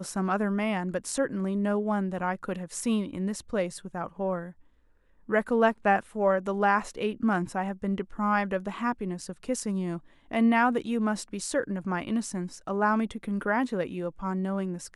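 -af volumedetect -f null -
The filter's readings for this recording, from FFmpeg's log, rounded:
mean_volume: -28.6 dB
max_volume: -11.5 dB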